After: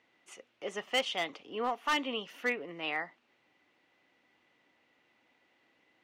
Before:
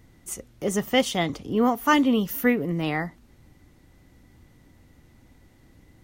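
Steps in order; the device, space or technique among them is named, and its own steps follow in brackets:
megaphone (band-pass filter 540–3,700 Hz; parametric band 2,700 Hz +8 dB 0.58 octaves; hard clipping −17 dBFS, distortion −12 dB)
level −6.5 dB

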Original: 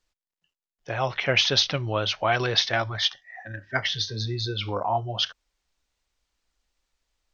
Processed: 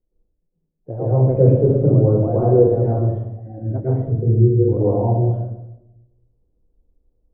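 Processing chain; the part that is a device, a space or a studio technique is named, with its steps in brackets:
next room (low-pass filter 500 Hz 24 dB per octave; convolution reverb RT60 0.90 s, pre-delay 105 ms, DRR −9 dB)
level +5.5 dB

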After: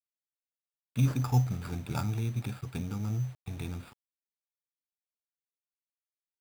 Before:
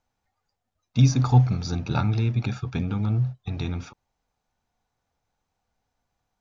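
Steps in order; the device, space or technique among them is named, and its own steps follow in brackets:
early 8-bit sampler (sample-rate reduction 6,100 Hz, jitter 0%; bit reduction 8 bits)
level −8.5 dB

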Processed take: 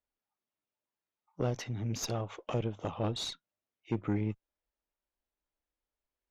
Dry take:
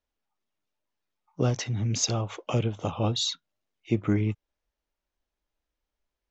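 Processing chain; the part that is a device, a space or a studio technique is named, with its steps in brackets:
tube preamp driven hard (tube saturation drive 20 dB, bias 0.6; low-shelf EQ 170 Hz −4.5 dB; high-shelf EQ 3,500 Hz −7.5 dB)
level −2 dB

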